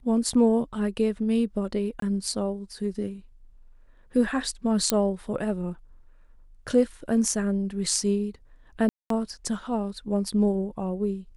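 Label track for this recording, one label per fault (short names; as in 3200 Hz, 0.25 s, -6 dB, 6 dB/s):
2.000000	2.020000	gap 23 ms
4.900000	4.900000	pop -5 dBFS
8.890000	9.100000	gap 0.213 s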